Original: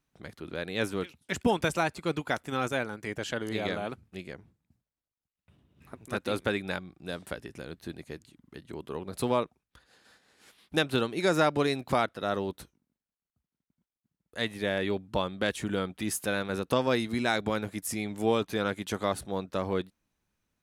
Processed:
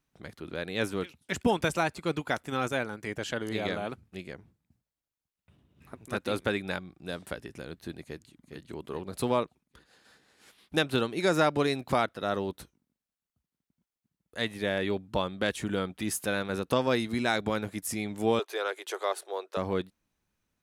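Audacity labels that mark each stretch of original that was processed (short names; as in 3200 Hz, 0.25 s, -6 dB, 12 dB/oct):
8.020000	8.620000	echo throw 0.41 s, feedback 45%, level -7.5 dB
18.390000	19.570000	elliptic high-pass 370 Hz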